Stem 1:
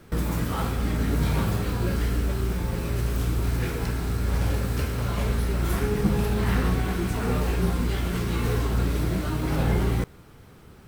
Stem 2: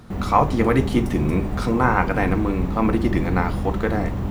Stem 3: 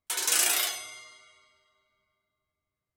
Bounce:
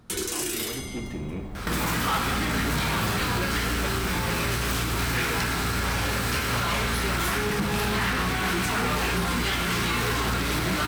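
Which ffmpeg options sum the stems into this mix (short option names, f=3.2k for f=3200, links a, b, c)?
-filter_complex "[0:a]asplit=2[a][b];[b]highpass=f=720:p=1,volume=23dB,asoftclip=type=tanh:threshold=-9.5dB[c];[a][c]amix=inputs=2:normalize=0,lowpass=f=6.4k:p=1,volume=-6dB,equalizer=f=490:t=o:w=1.5:g=-7,adelay=1550,volume=2.5dB[d];[1:a]asoftclip=type=tanh:threshold=-16.5dB,volume=-10dB[e];[2:a]lowshelf=f=510:t=q:w=3:g=12,volume=2.5dB,asplit=2[f][g];[g]volume=-8dB,aecho=0:1:102:1[h];[d][e][f][h]amix=inputs=4:normalize=0,alimiter=limit=-17.5dB:level=0:latency=1:release=413"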